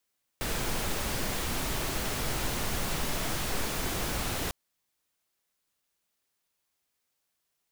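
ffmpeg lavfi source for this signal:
-f lavfi -i "anoisesrc=c=pink:a=0.145:d=4.1:r=44100:seed=1"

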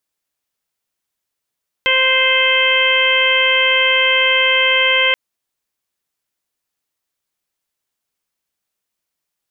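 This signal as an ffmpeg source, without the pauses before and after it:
-f lavfi -i "aevalsrc='0.0944*sin(2*PI*522*t)+0.0668*sin(2*PI*1044*t)+0.0841*sin(2*PI*1566*t)+0.168*sin(2*PI*2088*t)+0.119*sin(2*PI*2610*t)+0.15*sin(2*PI*3132*t)':d=3.28:s=44100"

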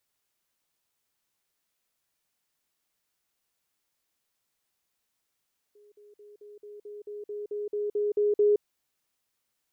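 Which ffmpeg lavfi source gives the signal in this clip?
-f lavfi -i "aevalsrc='pow(10,(-54+3*floor(t/0.22))/20)*sin(2*PI*415*t)*clip(min(mod(t,0.22),0.17-mod(t,0.22))/0.005,0,1)':d=2.86:s=44100"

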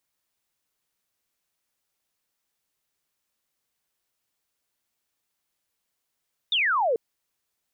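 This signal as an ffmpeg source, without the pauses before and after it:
-f lavfi -i "aevalsrc='0.1*clip(t/0.002,0,1)*clip((0.44-t)/0.002,0,1)*sin(2*PI*3700*0.44/log(430/3700)*(exp(log(430/3700)*t/0.44)-1))':d=0.44:s=44100"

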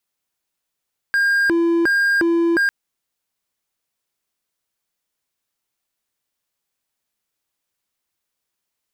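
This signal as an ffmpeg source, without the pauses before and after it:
-f lavfi -i "aevalsrc='0.251*(1-4*abs(mod((973.5*t+636.5/1.4*(0.5-abs(mod(1.4*t,1)-0.5)))+0.25,1)-0.5))':d=1.55:s=44100"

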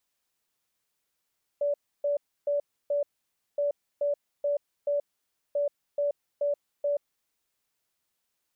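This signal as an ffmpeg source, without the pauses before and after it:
-f lavfi -i "aevalsrc='0.0668*sin(2*PI*577*t)*clip(min(mod(mod(t,1.97),0.43),0.13-mod(mod(t,1.97),0.43))/0.005,0,1)*lt(mod(t,1.97),1.72)':d=5.91:s=44100"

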